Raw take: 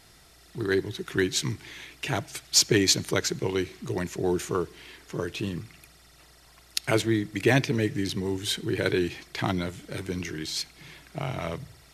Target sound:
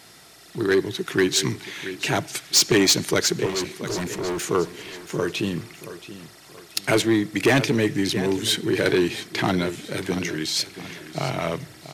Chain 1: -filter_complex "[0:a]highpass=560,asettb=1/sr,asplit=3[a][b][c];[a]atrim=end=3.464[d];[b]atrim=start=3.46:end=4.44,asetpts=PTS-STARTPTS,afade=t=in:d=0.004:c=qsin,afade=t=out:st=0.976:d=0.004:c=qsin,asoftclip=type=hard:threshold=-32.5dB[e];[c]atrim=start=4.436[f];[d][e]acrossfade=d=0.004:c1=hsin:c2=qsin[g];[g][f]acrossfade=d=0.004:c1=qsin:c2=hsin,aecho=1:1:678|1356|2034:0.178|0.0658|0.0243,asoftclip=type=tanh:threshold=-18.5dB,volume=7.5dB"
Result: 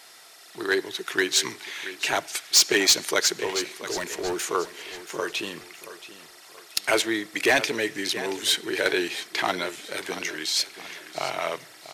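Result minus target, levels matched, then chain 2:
125 Hz band -17.0 dB
-filter_complex "[0:a]highpass=150,asettb=1/sr,asplit=3[a][b][c];[a]atrim=end=3.464[d];[b]atrim=start=3.46:end=4.44,asetpts=PTS-STARTPTS,afade=t=in:d=0.004:c=qsin,afade=t=out:st=0.976:d=0.004:c=qsin,asoftclip=type=hard:threshold=-32.5dB[e];[c]atrim=start=4.436[f];[d][e]acrossfade=d=0.004:c1=hsin:c2=qsin[g];[g][f]acrossfade=d=0.004:c1=qsin:c2=hsin,aecho=1:1:678|1356|2034:0.178|0.0658|0.0243,asoftclip=type=tanh:threshold=-18.5dB,volume=7.5dB"

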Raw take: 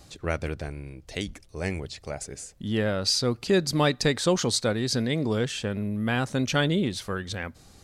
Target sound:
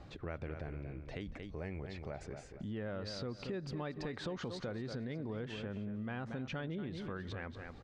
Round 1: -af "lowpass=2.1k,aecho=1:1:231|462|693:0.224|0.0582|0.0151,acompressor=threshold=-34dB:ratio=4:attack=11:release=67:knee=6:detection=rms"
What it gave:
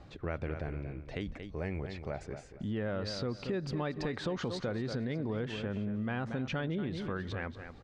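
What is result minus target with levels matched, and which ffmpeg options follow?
compressor: peak gain reduction -6 dB
-af "lowpass=2.1k,aecho=1:1:231|462|693:0.224|0.0582|0.0151,acompressor=threshold=-42dB:ratio=4:attack=11:release=67:knee=6:detection=rms"

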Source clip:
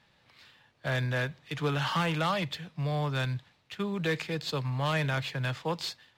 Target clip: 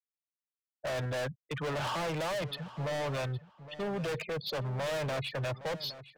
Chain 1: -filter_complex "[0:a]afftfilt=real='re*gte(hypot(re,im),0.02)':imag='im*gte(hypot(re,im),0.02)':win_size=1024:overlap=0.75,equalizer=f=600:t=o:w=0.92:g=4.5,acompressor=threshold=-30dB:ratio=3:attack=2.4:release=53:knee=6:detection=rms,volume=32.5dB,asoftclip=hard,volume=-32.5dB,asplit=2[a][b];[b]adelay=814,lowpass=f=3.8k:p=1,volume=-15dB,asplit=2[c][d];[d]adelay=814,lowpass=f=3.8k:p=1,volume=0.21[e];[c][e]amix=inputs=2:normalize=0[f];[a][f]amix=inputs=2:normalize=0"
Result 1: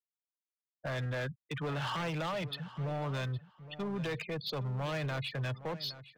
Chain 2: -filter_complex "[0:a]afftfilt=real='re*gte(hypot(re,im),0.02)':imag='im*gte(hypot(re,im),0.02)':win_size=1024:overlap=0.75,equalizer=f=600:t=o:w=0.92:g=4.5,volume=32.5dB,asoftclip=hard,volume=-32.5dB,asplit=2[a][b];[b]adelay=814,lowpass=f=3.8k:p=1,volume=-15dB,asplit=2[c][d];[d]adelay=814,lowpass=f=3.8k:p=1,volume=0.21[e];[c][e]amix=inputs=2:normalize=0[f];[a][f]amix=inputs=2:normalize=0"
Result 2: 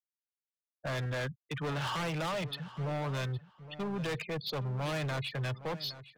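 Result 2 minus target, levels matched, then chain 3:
500 Hz band -3.0 dB
-filter_complex "[0:a]afftfilt=real='re*gte(hypot(re,im),0.02)':imag='im*gte(hypot(re,im),0.02)':win_size=1024:overlap=0.75,equalizer=f=600:t=o:w=0.92:g=16.5,volume=32.5dB,asoftclip=hard,volume=-32.5dB,asplit=2[a][b];[b]adelay=814,lowpass=f=3.8k:p=1,volume=-15dB,asplit=2[c][d];[d]adelay=814,lowpass=f=3.8k:p=1,volume=0.21[e];[c][e]amix=inputs=2:normalize=0[f];[a][f]amix=inputs=2:normalize=0"

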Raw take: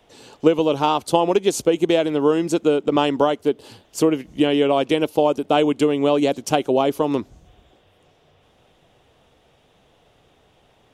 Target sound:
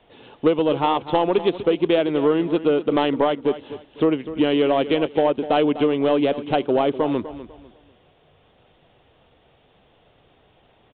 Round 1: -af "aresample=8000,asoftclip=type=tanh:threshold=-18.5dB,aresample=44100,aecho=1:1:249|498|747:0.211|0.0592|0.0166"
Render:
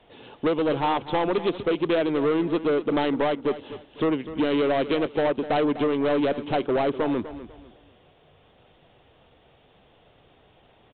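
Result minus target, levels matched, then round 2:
soft clip: distortion +10 dB
-af "aresample=8000,asoftclip=type=tanh:threshold=-8.5dB,aresample=44100,aecho=1:1:249|498|747:0.211|0.0592|0.0166"

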